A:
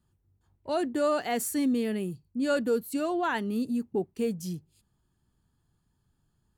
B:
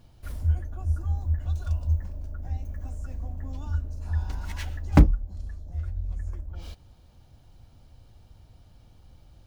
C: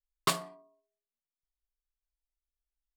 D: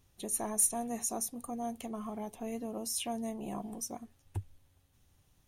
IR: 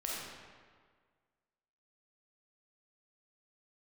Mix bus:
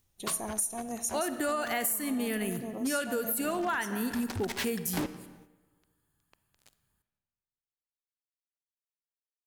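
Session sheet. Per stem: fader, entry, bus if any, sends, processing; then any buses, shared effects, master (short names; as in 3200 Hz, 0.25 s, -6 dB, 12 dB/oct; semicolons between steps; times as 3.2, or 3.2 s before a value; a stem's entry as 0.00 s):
-2.5 dB, 0.45 s, send -12 dB, EQ curve 510 Hz 0 dB, 1800 Hz +10 dB, 5300 Hz +1 dB, 12000 Hz +14 dB
-14.5 dB, 0.00 s, send -16 dB, Chebyshev band-pass 340–5000 Hz, order 2; fuzz box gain 43 dB, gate -43 dBFS
-8.5 dB, 0.00 s, no send, upward compressor, threshold -43 dBFS
-1.5 dB, 0.00 s, send -15 dB, dry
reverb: on, RT60 1.7 s, pre-delay 5 ms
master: high shelf 6300 Hz +5 dB; gate -53 dBFS, range -7 dB; compressor 12:1, threshold -27 dBFS, peak gain reduction 12 dB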